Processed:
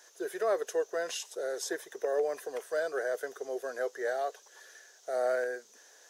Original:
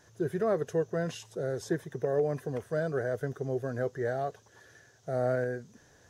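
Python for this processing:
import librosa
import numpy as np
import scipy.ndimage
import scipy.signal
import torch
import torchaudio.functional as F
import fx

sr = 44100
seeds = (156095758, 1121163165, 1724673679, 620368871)

y = scipy.signal.sosfilt(scipy.signal.butter(4, 420.0, 'highpass', fs=sr, output='sos'), x)
y = fx.high_shelf(y, sr, hz=2700.0, db=9.5)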